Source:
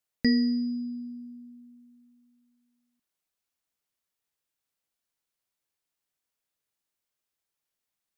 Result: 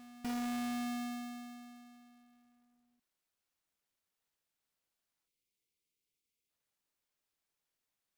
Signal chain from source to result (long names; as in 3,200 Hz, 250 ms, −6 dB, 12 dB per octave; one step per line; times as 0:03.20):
each half-wave held at its own peak
reversed playback
downward compressor 10 to 1, threshold −33 dBFS, peak gain reduction 17.5 dB
reversed playback
backwards echo 635 ms −17 dB
time-frequency box erased 0:05.28–0:06.49, 520–2,000 Hz
level −4.5 dB